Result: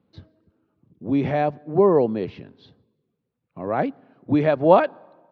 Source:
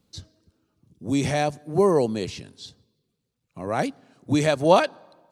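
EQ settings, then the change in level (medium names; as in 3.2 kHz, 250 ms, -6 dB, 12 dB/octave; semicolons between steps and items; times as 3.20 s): high-pass 210 Hz 6 dB/octave; distance through air 330 m; tape spacing loss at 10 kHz 23 dB; +5.5 dB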